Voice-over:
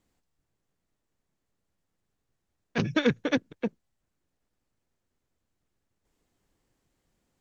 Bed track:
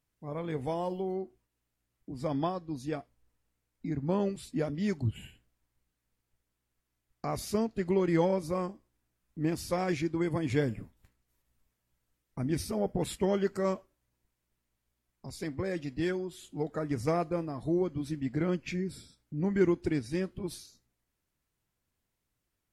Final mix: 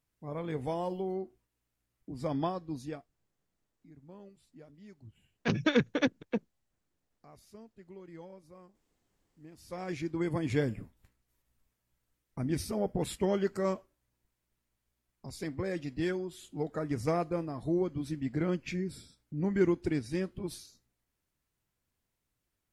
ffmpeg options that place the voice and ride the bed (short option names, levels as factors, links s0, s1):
-filter_complex "[0:a]adelay=2700,volume=0.794[s0];[1:a]volume=10,afade=t=out:st=2.77:d=0.33:silence=0.0891251,afade=t=in:st=9.54:d=0.76:silence=0.0891251[s1];[s0][s1]amix=inputs=2:normalize=0"